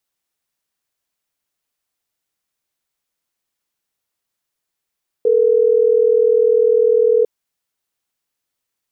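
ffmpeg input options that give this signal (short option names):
-f lavfi -i "aevalsrc='0.224*(sin(2*PI*440*t)+sin(2*PI*480*t))*clip(min(mod(t,6),2-mod(t,6))/0.005,0,1)':d=3.12:s=44100"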